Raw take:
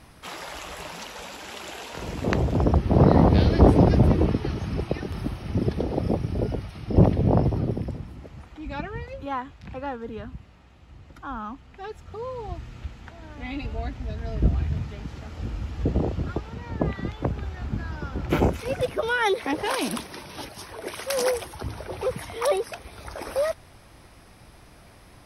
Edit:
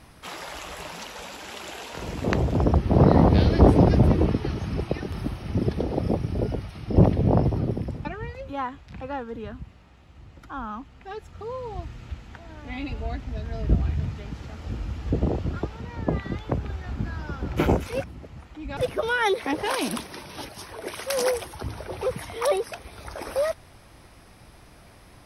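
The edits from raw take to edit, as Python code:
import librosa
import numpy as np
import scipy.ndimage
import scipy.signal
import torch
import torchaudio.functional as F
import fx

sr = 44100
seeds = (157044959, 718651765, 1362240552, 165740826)

y = fx.edit(x, sr, fx.move(start_s=8.05, length_s=0.73, to_s=18.77), tone=tone)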